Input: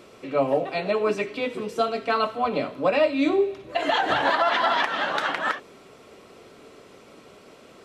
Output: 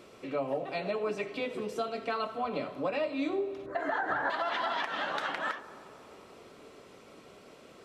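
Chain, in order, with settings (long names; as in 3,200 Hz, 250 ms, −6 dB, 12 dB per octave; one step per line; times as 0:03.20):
0:03.66–0:04.30: high shelf with overshoot 2,100 Hz −9 dB, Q 3
downward compressor 2.5 to 1, threshold −27 dBFS, peak gain reduction 8.5 dB
on a send: bucket-brigade delay 91 ms, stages 1,024, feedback 84%, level −18.5 dB
on the sum: level −4.5 dB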